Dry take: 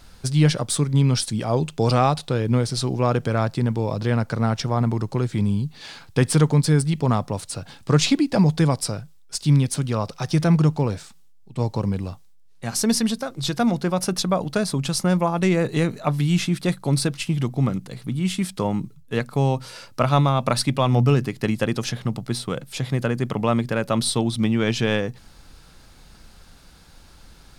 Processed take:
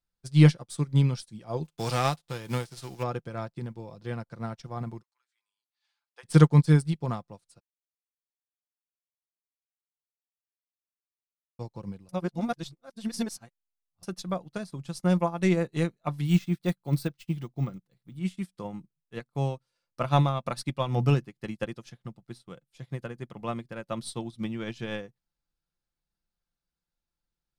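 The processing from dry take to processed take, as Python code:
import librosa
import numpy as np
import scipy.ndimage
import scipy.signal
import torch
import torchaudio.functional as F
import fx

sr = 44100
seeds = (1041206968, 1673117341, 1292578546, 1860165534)

y = fx.envelope_flatten(x, sr, power=0.6, at=(1.64, 3.02), fade=0.02)
y = fx.highpass(y, sr, hz=fx.line((5.01, 1300.0), (6.23, 640.0)), slope=24, at=(5.01, 6.23), fade=0.02)
y = fx.resample_bad(y, sr, factor=2, down='none', up='hold', at=(16.25, 18.17))
y = fx.edit(y, sr, fx.silence(start_s=7.6, length_s=3.99),
    fx.reverse_span(start_s=12.09, length_s=1.94), tone=tone)
y = y + 0.34 * np.pad(y, (int(5.8 * sr / 1000.0), 0))[:len(y)]
y = fx.upward_expand(y, sr, threshold_db=-39.0, expansion=2.5)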